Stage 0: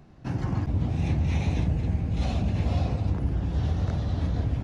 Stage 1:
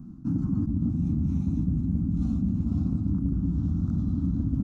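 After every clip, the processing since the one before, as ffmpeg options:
ffmpeg -i in.wav -af "firequalizer=gain_entry='entry(130,0);entry(180,10);entry(280,11);entry(430,-23);entry(1300,-6);entry(1800,-27);entry(6800,-8)':delay=0.05:min_phase=1,areverse,acompressor=threshold=-28dB:ratio=6,areverse,volume=5dB" out.wav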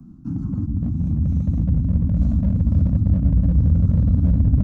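ffmpeg -i in.wav -filter_complex "[0:a]asubboost=boost=6:cutoff=180,acrossover=split=150|310[link_01][link_02][link_03];[link_02]volume=24.5dB,asoftclip=hard,volume=-24.5dB[link_04];[link_01][link_04][link_03]amix=inputs=3:normalize=0" out.wav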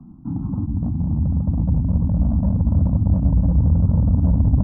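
ffmpeg -i in.wav -af "lowpass=frequency=900:width_type=q:width=3.8" out.wav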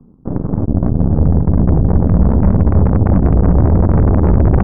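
ffmpeg -i in.wav -af "acontrast=78,aeval=exprs='0.708*(cos(1*acos(clip(val(0)/0.708,-1,1)))-cos(1*PI/2))+0.0891*(cos(3*acos(clip(val(0)/0.708,-1,1)))-cos(3*PI/2))+0.2*(cos(5*acos(clip(val(0)/0.708,-1,1)))-cos(5*PI/2))+0.112*(cos(6*acos(clip(val(0)/0.708,-1,1)))-cos(6*PI/2))+0.178*(cos(7*acos(clip(val(0)/0.708,-1,1)))-cos(7*PI/2))':channel_layout=same" out.wav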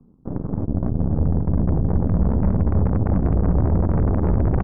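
ffmpeg -i in.wav -af "aecho=1:1:248:0.158,volume=-8dB" out.wav

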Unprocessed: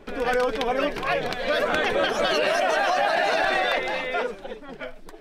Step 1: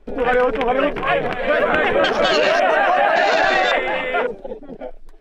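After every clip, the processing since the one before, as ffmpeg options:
ffmpeg -i in.wav -af "afwtdn=0.0251,volume=6.5dB" out.wav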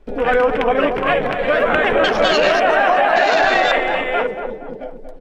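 ffmpeg -i in.wav -filter_complex "[0:a]asplit=2[link_01][link_02];[link_02]adelay=234,lowpass=frequency=1200:poles=1,volume=-7dB,asplit=2[link_03][link_04];[link_04]adelay=234,lowpass=frequency=1200:poles=1,volume=0.48,asplit=2[link_05][link_06];[link_06]adelay=234,lowpass=frequency=1200:poles=1,volume=0.48,asplit=2[link_07][link_08];[link_08]adelay=234,lowpass=frequency=1200:poles=1,volume=0.48,asplit=2[link_09][link_10];[link_10]adelay=234,lowpass=frequency=1200:poles=1,volume=0.48,asplit=2[link_11][link_12];[link_12]adelay=234,lowpass=frequency=1200:poles=1,volume=0.48[link_13];[link_01][link_03][link_05][link_07][link_09][link_11][link_13]amix=inputs=7:normalize=0,volume=1dB" out.wav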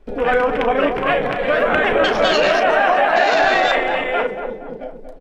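ffmpeg -i in.wav -filter_complex "[0:a]asplit=2[link_01][link_02];[link_02]adelay=35,volume=-10.5dB[link_03];[link_01][link_03]amix=inputs=2:normalize=0,volume=-1dB" out.wav

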